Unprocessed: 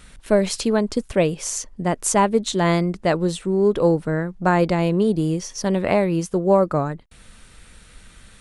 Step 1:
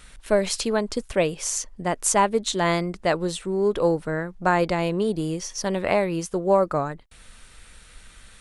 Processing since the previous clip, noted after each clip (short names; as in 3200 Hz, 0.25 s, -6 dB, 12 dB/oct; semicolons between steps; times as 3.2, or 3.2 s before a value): bell 170 Hz -7 dB 2.7 oct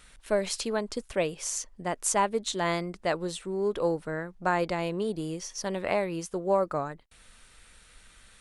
low shelf 200 Hz -4 dB; gain -5.5 dB